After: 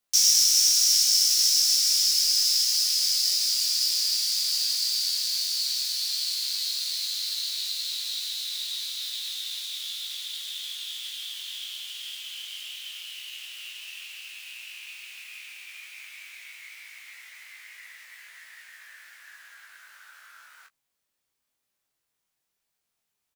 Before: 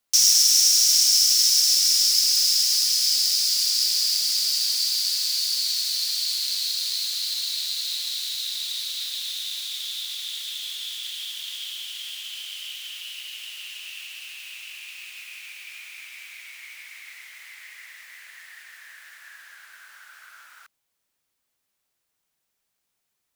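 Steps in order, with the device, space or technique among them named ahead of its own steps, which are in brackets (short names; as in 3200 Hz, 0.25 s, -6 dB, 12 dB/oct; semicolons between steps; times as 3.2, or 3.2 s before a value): double-tracked vocal (doubler 15 ms -12.5 dB; chorus 0.11 Hz, delay 18 ms, depth 6.2 ms)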